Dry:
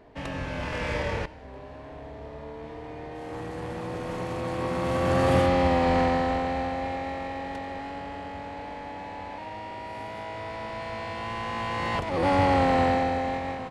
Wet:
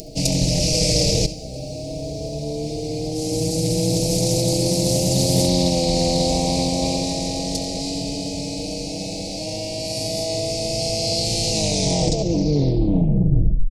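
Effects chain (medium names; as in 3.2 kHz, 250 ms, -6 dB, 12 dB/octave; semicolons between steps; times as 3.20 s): tape stop on the ending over 2.24 s; resonant high shelf 3.9 kHz +7.5 dB, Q 3; comb 6.3 ms, depth 81%; upward compressor, threshold -43 dBFS; elliptic band-stop 680–2500 Hz, stop band 40 dB; reverse; compression 12:1, threshold -27 dBFS, peak gain reduction 12.5 dB; reverse; tone controls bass +6 dB, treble +13 dB; flutter echo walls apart 11.6 m, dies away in 0.26 s; loudspeaker Doppler distortion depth 0.36 ms; trim +9 dB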